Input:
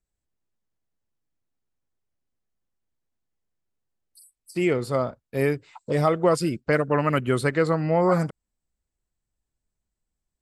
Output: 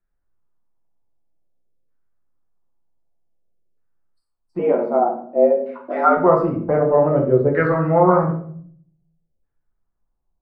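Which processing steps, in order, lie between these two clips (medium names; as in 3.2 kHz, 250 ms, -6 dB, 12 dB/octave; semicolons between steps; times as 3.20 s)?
LFO low-pass saw down 0.53 Hz 480–1600 Hz; 4.59–6.17 s: frequency shift +110 Hz; simulated room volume 79 m³, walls mixed, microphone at 0.83 m; trim -1 dB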